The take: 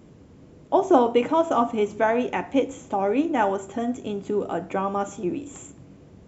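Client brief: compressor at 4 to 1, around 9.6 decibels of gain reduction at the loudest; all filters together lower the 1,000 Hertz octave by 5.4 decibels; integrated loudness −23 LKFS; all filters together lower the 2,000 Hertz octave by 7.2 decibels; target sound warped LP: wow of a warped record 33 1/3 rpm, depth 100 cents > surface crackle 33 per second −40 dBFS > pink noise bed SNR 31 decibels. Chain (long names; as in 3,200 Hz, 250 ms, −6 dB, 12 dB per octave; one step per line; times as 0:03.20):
parametric band 1,000 Hz −6 dB
parametric band 2,000 Hz −7.5 dB
downward compressor 4 to 1, threshold −27 dBFS
wow of a warped record 33 1/3 rpm, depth 100 cents
surface crackle 33 per second −40 dBFS
pink noise bed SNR 31 dB
level +9 dB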